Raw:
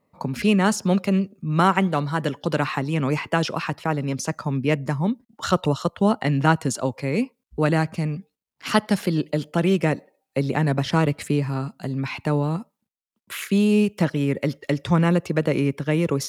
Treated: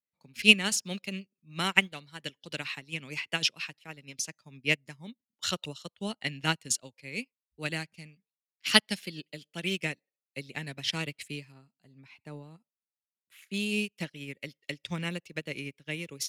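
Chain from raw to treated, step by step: resonant high shelf 1700 Hz +13.5 dB, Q 1.5, from 11.52 s +6 dB, from 13.54 s +12.5 dB; upward expander 2.5:1, over -30 dBFS; gain -4 dB

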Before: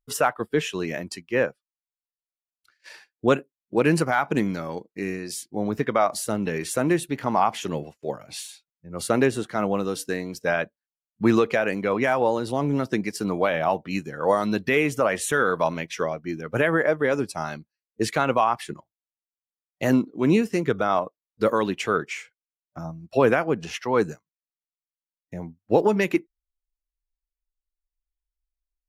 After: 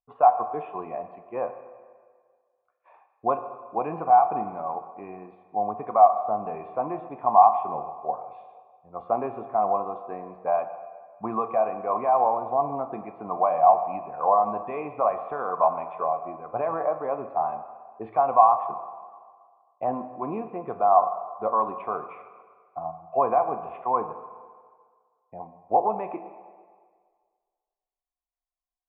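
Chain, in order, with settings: in parallel at -2.5 dB: limiter -15.5 dBFS, peak gain reduction 8.5 dB; on the sum: vocal tract filter a; reverb RT60 1.8 s, pre-delay 6 ms, DRR 7.5 dB; gain +8.5 dB

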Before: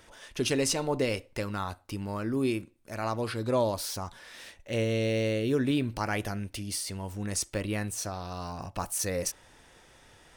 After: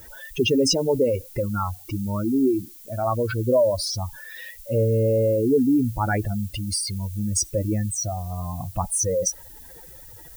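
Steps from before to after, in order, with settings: spectral contrast raised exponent 2.9; added noise violet -54 dBFS; gain +8.5 dB

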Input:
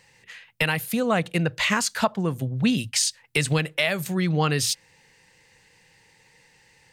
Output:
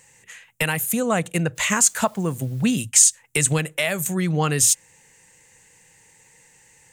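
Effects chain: resonant high shelf 5800 Hz +7 dB, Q 3; 1.55–2.82 added noise white -56 dBFS; gain +1 dB

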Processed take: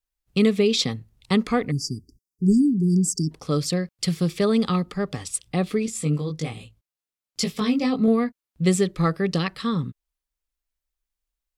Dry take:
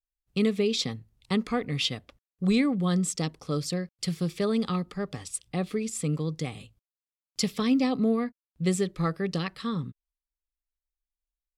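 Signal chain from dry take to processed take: 1.71–3.31 spectral delete 410–4600 Hz; 5.86–8.08 chorus 1.3 Hz, delay 17 ms, depth 4 ms; gain +6 dB

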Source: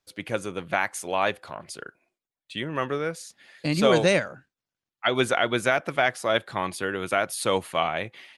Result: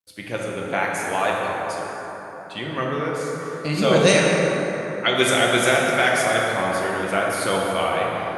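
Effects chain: 4–6.27 high shelf 3100 Hz +11.5 dB; plate-style reverb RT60 4.3 s, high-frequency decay 0.4×, DRR -3.5 dB; requantised 12-bit, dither none; gain -1 dB

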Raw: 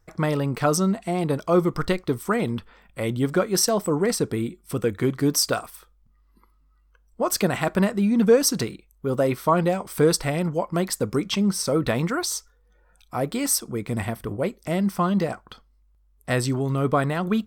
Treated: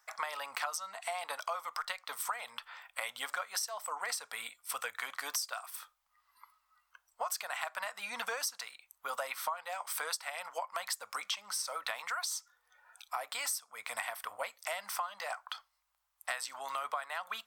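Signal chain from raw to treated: inverse Chebyshev high-pass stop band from 390 Hz, stop band 40 dB; compressor 10:1, threshold -39 dBFS, peak gain reduction 22 dB; gain +5 dB

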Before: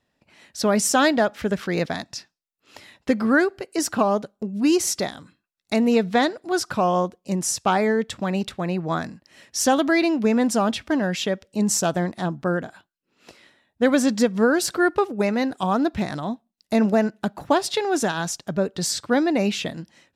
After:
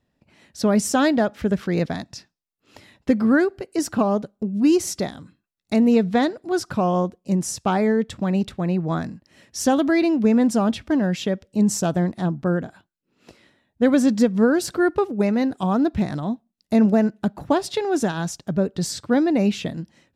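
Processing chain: low shelf 410 Hz +10.5 dB; gain -4.5 dB

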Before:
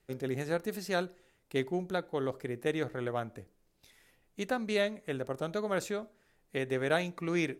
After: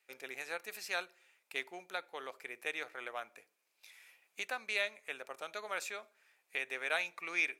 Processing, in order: recorder AGC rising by 5.4 dB/s; HPF 920 Hz 12 dB/oct; bell 2400 Hz +10.5 dB 0.25 oct; gain -2 dB

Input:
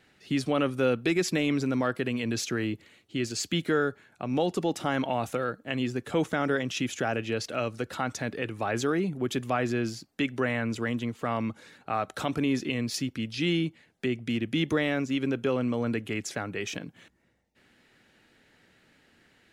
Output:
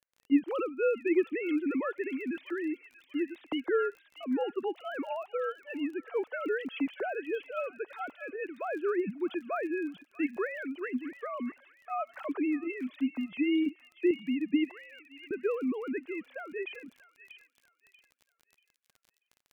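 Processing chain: sine-wave speech; gate -51 dBFS, range -25 dB; 13.66–14.11 small resonant body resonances 290/2800 Hz, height 13 dB; 14.71–15.31 differentiator; crackle 18/s -41 dBFS; on a send: thin delay 0.637 s, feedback 30%, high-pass 2600 Hz, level -6 dB; on the sum: gain -3.5 dB

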